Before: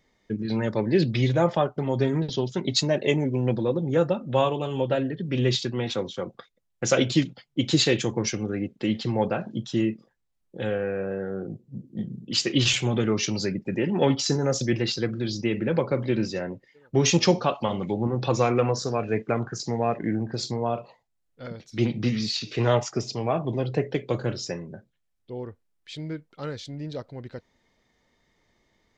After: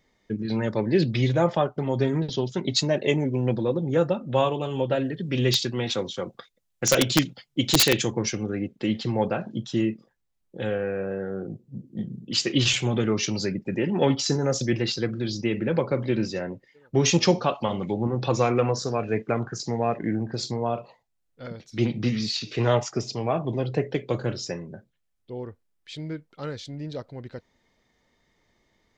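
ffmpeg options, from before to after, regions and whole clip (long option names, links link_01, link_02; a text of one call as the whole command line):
ffmpeg -i in.wav -filter_complex "[0:a]asettb=1/sr,asplit=3[link_01][link_02][link_03];[link_01]atrim=end=5.004[link_04];[link_02]atrim=start=5:end=8.1,asetpts=PTS-STARTPTS,afade=type=in:duration=0.004:curve=qsin,afade=type=out:start_time=3.096:duration=0.004:curve=qsin,highshelf=frequency=2700:gain=6,aeval=exprs='(mod(2.99*val(0)+1,2)-1)/2.99':channel_layout=same[link_05];[link_03]atrim=start=8.096[link_06];[link_04][link_05]acrossfade=duration=0.004:curve1=hsin:curve2=qsin[link_07];[link_07][link_06]acrossfade=duration=0.004:curve1=qsin:curve2=hsin" out.wav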